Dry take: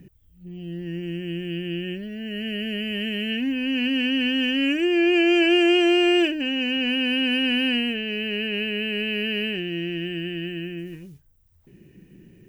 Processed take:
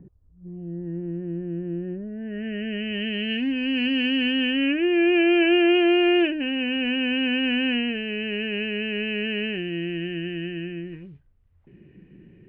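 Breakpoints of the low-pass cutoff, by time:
low-pass 24 dB/octave
2.05 s 1.2 kHz
2.45 s 2 kHz
3.39 s 4.5 kHz
4.09 s 4.5 kHz
4.74 s 2.8 kHz

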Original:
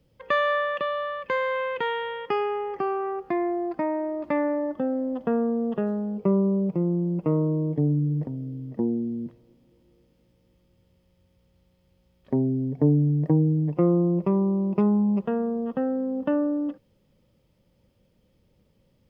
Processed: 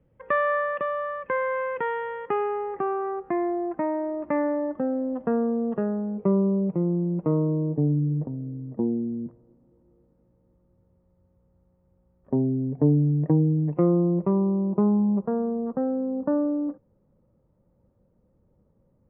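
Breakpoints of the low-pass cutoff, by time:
low-pass 24 dB/octave
7.04 s 2 kHz
7.77 s 1.3 kHz
12.40 s 1.3 kHz
13.42 s 2.1 kHz
13.97 s 2.1 kHz
14.63 s 1.3 kHz

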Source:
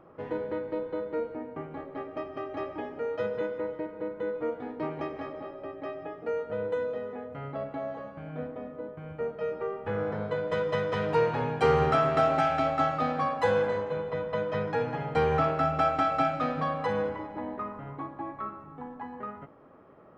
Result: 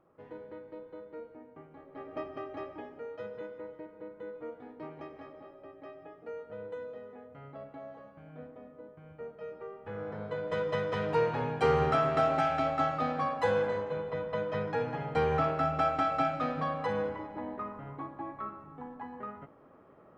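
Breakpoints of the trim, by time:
1.80 s -13 dB
2.18 s -2 dB
3.14 s -10.5 dB
9.79 s -10.5 dB
10.60 s -3 dB

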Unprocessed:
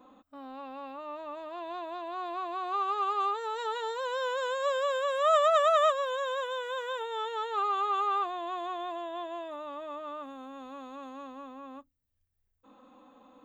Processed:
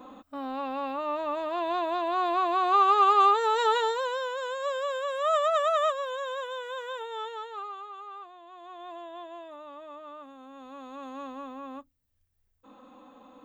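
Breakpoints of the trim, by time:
3.76 s +9.5 dB
4.29 s -1.5 dB
7.24 s -1.5 dB
7.93 s -14 dB
8.49 s -14 dB
8.93 s -4.5 dB
10.37 s -4.5 dB
11.22 s +4.5 dB

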